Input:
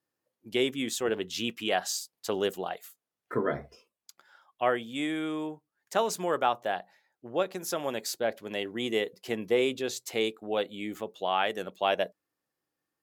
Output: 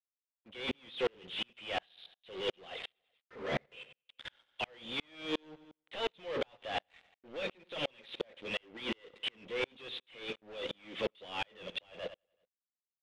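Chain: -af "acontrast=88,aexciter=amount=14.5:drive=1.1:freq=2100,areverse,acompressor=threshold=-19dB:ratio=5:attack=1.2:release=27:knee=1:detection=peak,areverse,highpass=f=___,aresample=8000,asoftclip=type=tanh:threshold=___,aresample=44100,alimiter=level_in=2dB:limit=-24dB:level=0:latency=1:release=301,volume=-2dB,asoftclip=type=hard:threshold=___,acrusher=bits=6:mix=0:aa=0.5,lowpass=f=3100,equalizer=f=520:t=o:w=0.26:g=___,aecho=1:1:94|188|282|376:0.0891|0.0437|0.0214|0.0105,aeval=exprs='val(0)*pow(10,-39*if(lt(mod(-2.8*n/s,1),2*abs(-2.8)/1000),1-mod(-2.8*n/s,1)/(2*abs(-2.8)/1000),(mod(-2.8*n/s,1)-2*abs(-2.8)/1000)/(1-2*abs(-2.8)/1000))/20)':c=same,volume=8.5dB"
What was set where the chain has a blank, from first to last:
130, -25.5dB, -38.5dB, 8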